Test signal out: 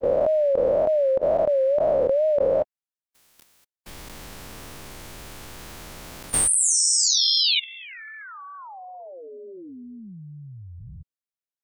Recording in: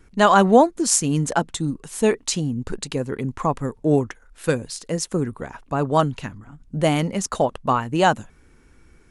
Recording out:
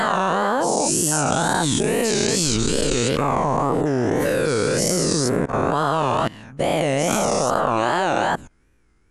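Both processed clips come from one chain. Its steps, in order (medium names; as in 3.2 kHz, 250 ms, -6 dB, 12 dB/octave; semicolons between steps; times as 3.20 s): every event in the spectrogram widened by 480 ms; level held to a coarse grid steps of 20 dB; wow and flutter 140 cents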